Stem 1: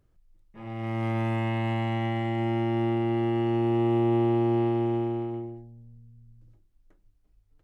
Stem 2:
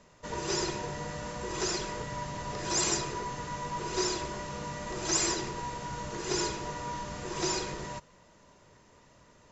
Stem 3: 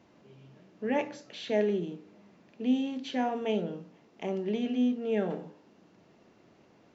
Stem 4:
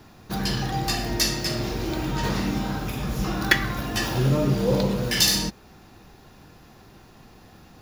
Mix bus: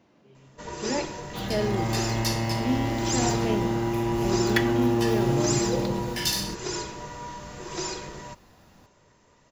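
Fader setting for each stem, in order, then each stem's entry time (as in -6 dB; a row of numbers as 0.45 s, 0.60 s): -1.0 dB, -1.0 dB, -0.5 dB, -7.0 dB; 0.75 s, 0.35 s, 0.00 s, 1.05 s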